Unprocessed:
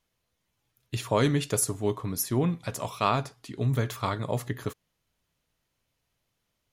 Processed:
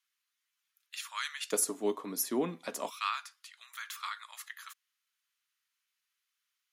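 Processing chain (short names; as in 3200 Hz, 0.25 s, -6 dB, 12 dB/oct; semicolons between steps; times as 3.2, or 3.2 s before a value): steep high-pass 1200 Hz 36 dB/oct, from 1.51 s 220 Hz, from 2.89 s 1200 Hz; gain -3 dB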